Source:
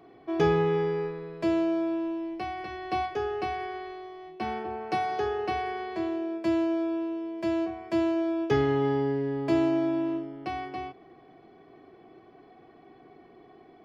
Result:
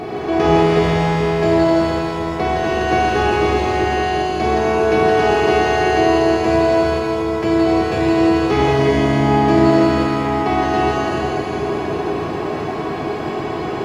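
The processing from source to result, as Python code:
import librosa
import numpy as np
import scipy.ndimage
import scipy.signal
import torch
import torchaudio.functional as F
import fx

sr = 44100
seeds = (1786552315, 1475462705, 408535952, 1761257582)

y = fx.bin_compress(x, sr, power=0.4)
y = y + 10.0 ** (-37.0 / 20.0) * np.sin(2.0 * np.pi * 720.0 * np.arange(len(y)) / sr)
y = fx.echo_split(y, sr, split_hz=670.0, low_ms=374, high_ms=167, feedback_pct=52, wet_db=-4.0)
y = fx.rev_shimmer(y, sr, seeds[0], rt60_s=1.6, semitones=7, shimmer_db=-8, drr_db=-3.0)
y = y * librosa.db_to_amplitude(3.5)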